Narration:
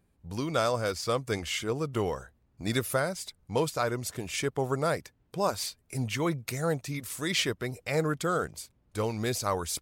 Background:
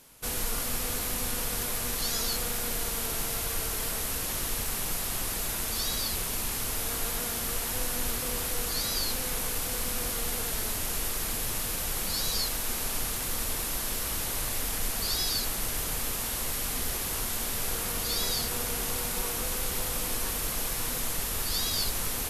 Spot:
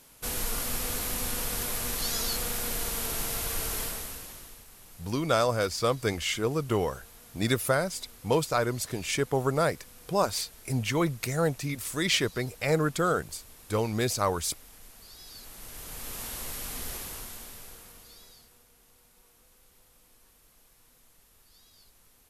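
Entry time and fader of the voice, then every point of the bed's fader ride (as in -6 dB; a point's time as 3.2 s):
4.75 s, +2.5 dB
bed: 3.8 s -0.5 dB
4.66 s -20.5 dB
15.14 s -20.5 dB
16.21 s -5.5 dB
16.96 s -5.5 dB
18.68 s -30 dB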